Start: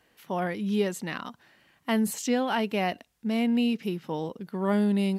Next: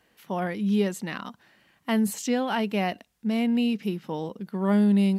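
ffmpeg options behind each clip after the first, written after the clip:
-af "equalizer=f=200:w=6.8:g=5"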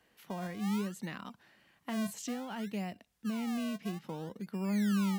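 -filter_complex "[0:a]acrossover=split=190[s0][s1];[s0]acrusher=samples=34:mix=1:aa=0.000001:lfo=1:lforange=34:lforate=0.6[s2];[s1]acompressor=threshold=0.0178:ratio=6[s3];[s2][s3]amix=inputs=2:normalize=0,volume=0.596"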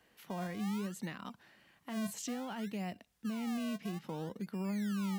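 -af "alimiter=level_in=2.51:limit=0.0631:level=0:latency=1:release=90,volume=0.398,volume=1.12"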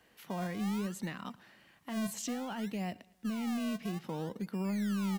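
-filter_complex "[0:a]asplit=2[s0][s1];[s1]aeval=exprs='clip(val(0),-1,0.0126)':c=same,volume=0.376[s2];[s0][s2]amix=inputs=2:normalize=0,aecho=1:1:112|224|336:0.0631|0.0315|0.0158"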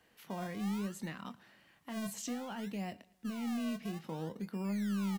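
-filter_complex "[0:a]asplit=2[s0][s1];[s1]adelay=25,volume=0.251[s2];[s0][s2]amix=inputs=2:normalize=0,volume=0.708"

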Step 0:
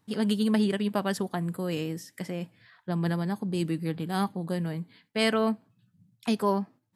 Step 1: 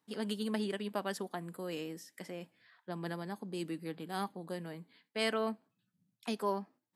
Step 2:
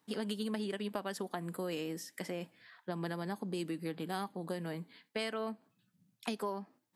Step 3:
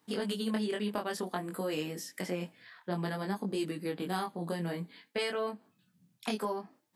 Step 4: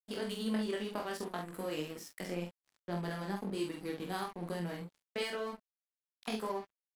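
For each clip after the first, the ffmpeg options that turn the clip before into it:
-af "highpass=260,volume=0.447"
-af "acompressor=threshold=0.01:ratio=6,volume=2"
-af "flanger=delay=20:depth=3.5:speed=0.55,volume=2.24"
-filter_complex "[0:a]asplit=2[s0][s1];[s1]adelay=46,volume=0.631[s2];[s0][s2]amix=inputs=2:normalize=0,aeval=exprs='sgn(val(0))*max(abs(val(0))-0.00531,0)':c=same,volume=0.668"

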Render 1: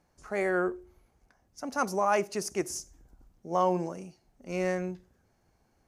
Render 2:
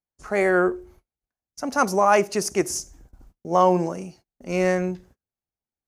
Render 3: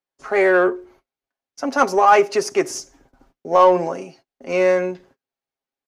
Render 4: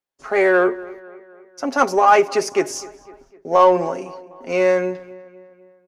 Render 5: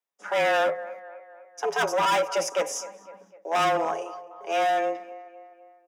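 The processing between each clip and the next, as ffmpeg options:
-af "agate=range=0.0158:threshold=0.00141:ratio=16:detection=peak,volume=2.66"
-filter_complex "[0:a]acrossover=split=250 5000:gain=0.158 1 0.224[s0][s1][s2];[s0][s1][s2]amix=inputs=3:normalize=0,aecho=1:1:7.4:0.54,asplit=2[s3][s4];[s4]asoftclip=type=tanh:threshold=0.1,volume=0.473[s5];[s3][s5]amix=inputs=2:normalize=0,volume=1.26"
-filter_complex "[0:a]asplit=2[s0][s1];[s1]adelay=252,lowpass=f=3200:p=1,volume=0.1,asplit=2[s2][s3];[s3]adelay=252,lowpass=f=3200:p=1,volume=0.55,asplit=2[s4][s5];[s5]adelay=252,lowpass=f=3200:p=1,volume=0.55,asplit=2[s6][s7];[s7]adelay=252,lowpass=f=3200:p=1,volume=0.55[s8];[s0][s2][s4][s6][s8]amix=inputs=5:normalize=0"
-af "asoftclip=type=hard:threshold=0.133,afreqshift=160,asuperstop=centerf=4300:order=4:qfactor=6.2,volume=0.708"

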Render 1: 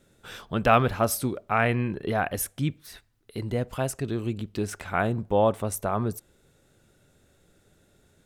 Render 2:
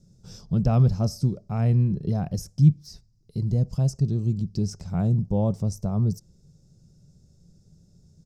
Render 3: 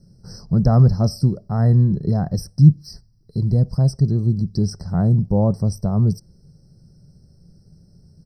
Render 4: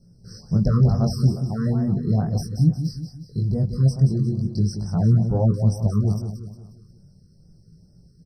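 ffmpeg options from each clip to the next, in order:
-filter_complex "[0:a]firequalizer=gain_entry='entry(110,0);entry(160,7);entry(260,-11);entry(1600,-30);entry(3500,-23);entry(5100,1);entry(9500,-20)':delay=0.05:min_phase=1,acrossover=split=2200[s0][s1];[s1]alimiter=level_in=4.47:limit=0.0631:level=0:latency=1:release=173,volume=0.224[s2];[s0][s2]amix=inputs=2:normalize=0,volume=2.37"
-af "afftfilt=real='re*eq(mod(floor(b*sr/1024/2000),2),0)':imag='im*eq(mod(floor(b*sr/1024/2000),2),0)':win_size=1024:overlap=0.75,volume=2"
-filter_complex "[0:a]flanger=delay=17:depth=5.6:speed=0.37,asplit=2[s0][s1];[s1]aecho=0:1:179|358|537|716|895:0.376|0.173|0.0795|0.0366|0.0168[s2];[s0][s2]amix=inputs=2:normalize=0,afftfilt=real='re*(1-between(b*sr/1024,690*pow(3400/690,0.5+0.5*sin(2*PI*2.3*pts/sr))/1.41,690*pow(3400/690,0.5+0.5*sin(2*PI*2.3*pts/sr))*1.41))':imag='im*(1-between(b*sr/1024,690*pow(3400/690,0.5+0.5*sin(2*PI*2.3*pts/sr))/1.41,690*pow(3400/690,0.5+0.5*sin(2*PI*2.3*pts/sr))*1.41))':win_size=1024:overlap=0.75"

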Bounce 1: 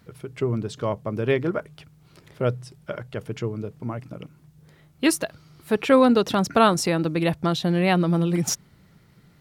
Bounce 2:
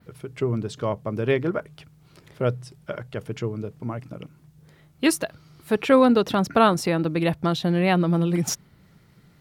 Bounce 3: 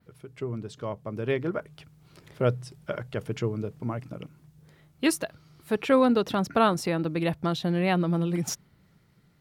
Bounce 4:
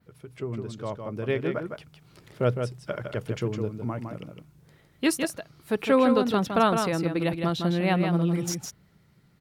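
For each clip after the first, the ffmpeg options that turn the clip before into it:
-af "adynamicequalizer=threshold=0.00501:dfrequency=7200:dqfactor=0.81:tfrequency=7200:tqfactor=0.81:attack=5:release=100:ratio=0.375:range=3.5:mode=cutabove:tftype=bell"
-af "dynaudnorm=f=470:g=7:m=3.76,volume=0.376"
-af "aecho=1:1:159:0.501"

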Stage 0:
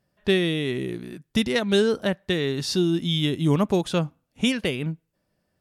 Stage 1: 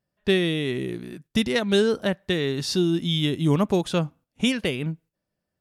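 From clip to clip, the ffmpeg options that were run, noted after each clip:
-af "agate=range=0.355:threshold=0.00398:ratio=16:detection=peak"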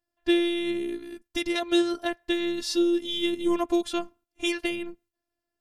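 -af "afftfilt=real='hypot(re,im)*cos(PI*b)':imag='0':win_size=512:overlap=0.75,volume=1.12"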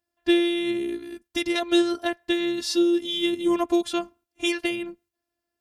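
-af "highpass=45,volume=1.33"

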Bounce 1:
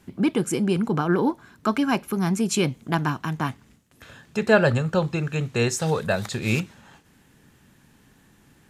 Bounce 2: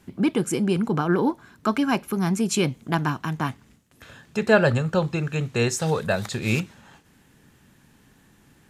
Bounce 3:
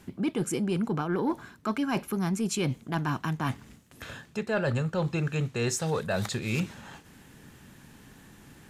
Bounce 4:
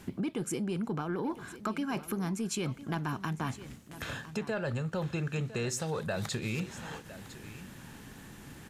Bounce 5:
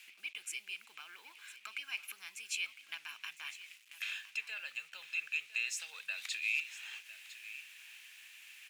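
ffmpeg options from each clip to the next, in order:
-af anull
-af "areverse,acompressor=threshold=0.0282:ratio=4,areverse,asoftclip=type=tanh:threshold=0.0891,volume=1.68"
-af "acompressor=threshold=0.02:ratio=6,aecho=1:1:1006:0.178,volume=1.41"
-af "acrusher=bits=8:mix=0:aa=0.5,highpass=f=2500:t=q:w=5.2,volume=0.562"

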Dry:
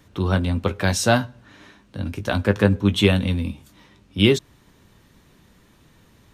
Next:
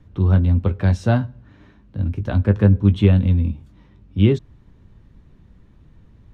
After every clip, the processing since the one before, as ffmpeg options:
-filter_complex "[0:a]aemphasis=mode=reproduction:type=riaa,acrossover=split=620|3400[s0][s1][s2];[s2]alimiter=level_in=1.33:limit=0.0631:level=0:latency=1:release=148,volume=0.75[s3];[s0][s1][s3]amix=inputs=3:normalize=0,volume=0.501"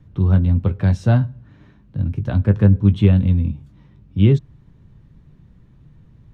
-af "equalizer=f=140:w=2.2:g=9.5,volume=0.794"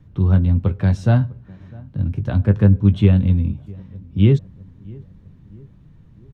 -filter_complex "[0:a]asplit=2[s0][s1];[s1]adelay=652,lowpass=f=1200:p=1,volume=0.0708,asplit=2[s2][s3];[s3]adelay=652,lowpass=f=1200:p=1,volume=0.53,asplit=2[s4][s5];[s5]adelay=652,lowpass=f=1200:p=1,volume=0.53,asplit=2[s6][s7];[s7]adelay=652,lowpass=f=1200:p=1,volume=0.53[s8];[s0][s2][s4][s6][s8]amix=inputs=5:normalize=0"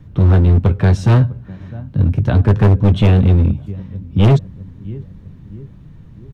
-af "volume=5.62,asoftclip=hard,volume=0.178,volume=2.51"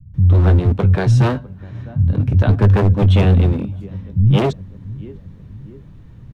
-filter_complex "[0:a]acrossover=split=180[s0][s1];[s1]adelay=140[s2];[s0][s2]amix=inputs=2:normalize=0"

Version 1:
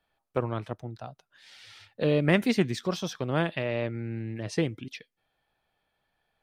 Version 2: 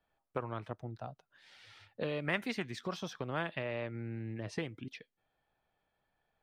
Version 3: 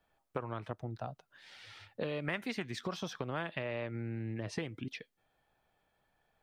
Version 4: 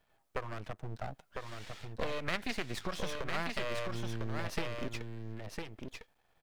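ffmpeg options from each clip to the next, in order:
-filter_complex "[0:a]acrossover=split=830[s0][s1];[s0]acompressor=threshold=0.02:ratio=6[s2];[s1]highshelf=f=2900:g=-10[s3];[s2][s3]amix=inputs=2:normalize=0,volume=0.75"
-af "acompressor=threshold=0.01:ratio=2.5,volume=1.68"
-af "aeval=exprs='max(val(0),0)':c=same,aecho=1:1:1003:0.596,volume=1.88"

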